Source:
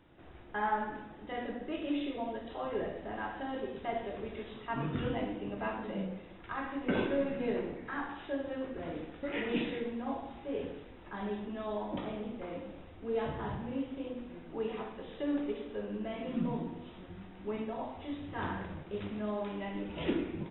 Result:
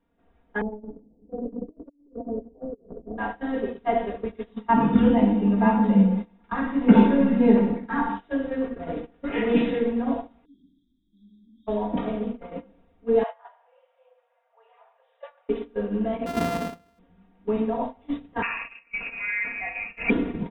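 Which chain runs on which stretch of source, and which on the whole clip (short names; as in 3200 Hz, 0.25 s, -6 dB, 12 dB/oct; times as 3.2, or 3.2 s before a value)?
0.61–3.18 inverse Chebyshev low-pass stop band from 3000 Hz, stop band 80 dB + negative-ratio compressor -41 dBFS, ratio -0.5
4.54–8.22 bell 150 Hz -4.5 dB 0.37 oct + small resonant body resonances 210/890/3600 Hz, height 13 dB, ringing for 85 ms
10.45–11.67 brick-wall FIR band-stop 370–3200 Hz + low shelf 310 Hz -10 dB
13.23–15.49 steep high-pass 540 Hz 72 dB/oct + air absorption 260 m
16.26–16.99 sample sorter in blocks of 128 samples + HPF 51 Hz
18.42–20.1 upward compressor, threshold -42 dBFS + inverted band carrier 2700 Hz
whole clip: gate -39 dBFS, range -20 dB; high shelf 2400 Hz -10 dB; comb 4.3 ms, depth 94%; gain +8 dB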